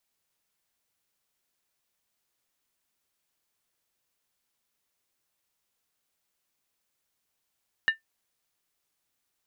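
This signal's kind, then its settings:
struck skin, lowest mode 1,790 Hz, decay 0.13 s, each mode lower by 10.5 dB, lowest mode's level −15 dB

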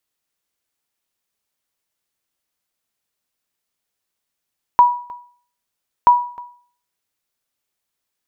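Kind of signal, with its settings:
ping with an echo 972 Hz, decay 0.48 s, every 1.28 s, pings 2, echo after 0.31 s, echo −23 dB −3 dBFS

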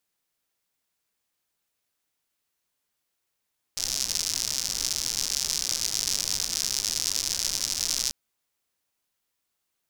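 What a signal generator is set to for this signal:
rain-like ticks over hiss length 4.34 s, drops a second 130, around 5,500 Hz, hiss −15 dB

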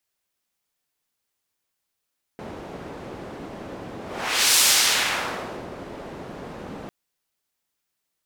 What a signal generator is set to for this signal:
pass-by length 4.50 s, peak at 0:02.18, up 0.58 s, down 1.20 s, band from 390 Hz, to 6,800 Hz, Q 0.71, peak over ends 20.5 dB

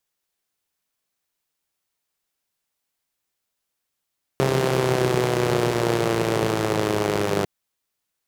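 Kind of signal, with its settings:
pulse-train model of a four-cylinder engine, changing speed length 3.05 s, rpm 4,000, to 3,000, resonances 160/370 Hz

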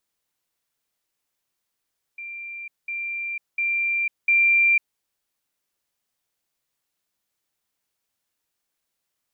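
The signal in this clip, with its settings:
level staircase 2,370 Hz −32.5 dBFS, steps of 6 dB, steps 4, 0.50 s 0.20 s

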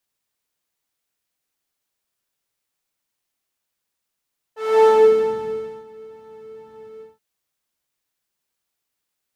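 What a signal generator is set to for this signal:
subtractive patch with pulse-width modulation A4, sub −27 dB, noise −6 dB, filter bandpass, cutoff 120 Hz, Q 1.1, filter envelope 3 octaves, filter decay 0.82 s, filter sustain 15%, attack 313 ms, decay 0.97 s, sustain −22 dB, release 0.18 s, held 2.45 s, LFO 2.2 Hz, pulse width 35%, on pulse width 18%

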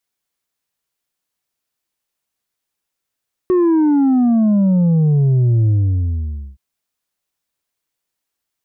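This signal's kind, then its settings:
bass drop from 370 Hz, over 3.07 s, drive 4 dB, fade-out 0.89 s, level −11 dB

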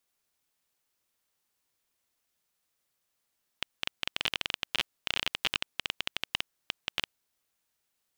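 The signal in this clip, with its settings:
Geiger counter clicks 16 per second −10.5 dBFS 3.57 s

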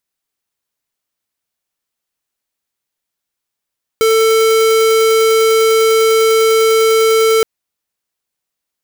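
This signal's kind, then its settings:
tone square 445 Hz −10.5 dBFS 3.42 s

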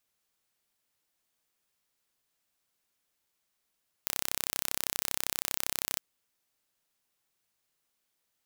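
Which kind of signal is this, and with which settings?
impulse train 32.6 per second, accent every 0, −3 dBFS 1.92 s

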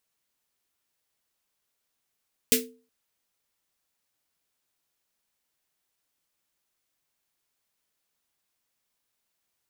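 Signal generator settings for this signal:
synth snare length 0.37 s, tones 250 Hz, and 450 Hz, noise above 1,900 Hz, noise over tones 7 dB, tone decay 0.39 s, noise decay 0.20 s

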